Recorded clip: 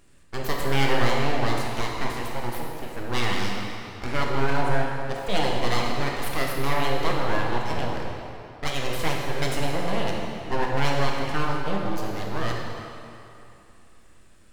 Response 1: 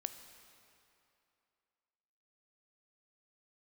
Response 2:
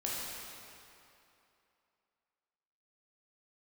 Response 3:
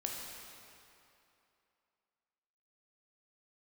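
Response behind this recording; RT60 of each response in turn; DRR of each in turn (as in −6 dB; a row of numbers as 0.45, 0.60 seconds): 3; 2.8, 2.8, 2.8 seconds; 8.5, −6.0, −1.0 decibels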